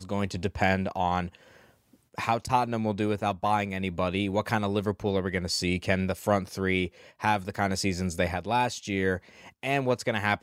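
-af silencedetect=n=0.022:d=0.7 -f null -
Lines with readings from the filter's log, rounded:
silence_start: 1.28
silence_end: 2.18 | silence_duration: 0.90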